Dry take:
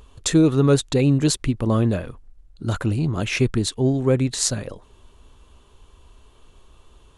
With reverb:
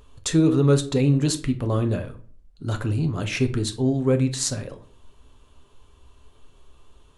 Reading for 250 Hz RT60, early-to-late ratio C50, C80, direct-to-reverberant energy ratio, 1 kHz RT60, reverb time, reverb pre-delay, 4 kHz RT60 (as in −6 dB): 0.60 s, 14.5 dB, 19.5 dB, 7.0 dB, 0.40 s, 0.45 s, 7 ms, 0.30 s